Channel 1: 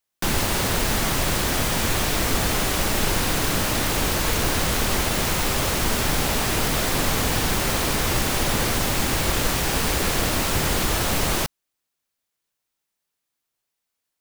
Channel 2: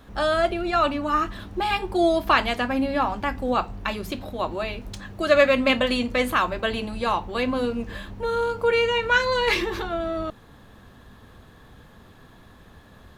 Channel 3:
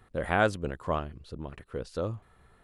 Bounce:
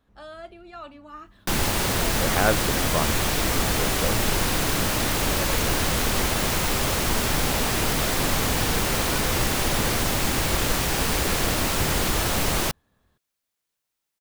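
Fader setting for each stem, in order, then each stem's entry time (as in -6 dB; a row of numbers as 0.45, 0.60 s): -1.0, -19.0, +2.5 dB; 1.25, 0.00, 2.05 s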